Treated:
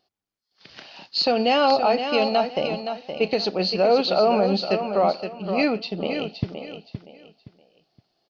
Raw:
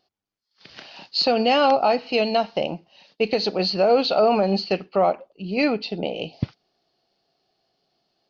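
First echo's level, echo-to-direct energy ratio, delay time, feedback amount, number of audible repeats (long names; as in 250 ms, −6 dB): −8.0 dB, −7.5 dB, 519 ms, 27%, 3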